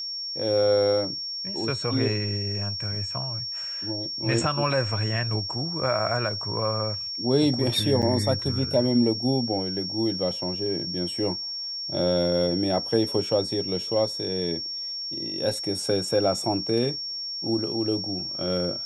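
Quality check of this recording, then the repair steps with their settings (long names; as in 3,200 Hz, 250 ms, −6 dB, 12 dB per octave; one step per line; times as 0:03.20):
whistle 5,500 Hz −30 dBFS
0:08.02–0:08.03: drop-out 7.5 ms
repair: notch filter 5,500 Hz, Q 30
repair the gap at 0:08.02, 7.5 ms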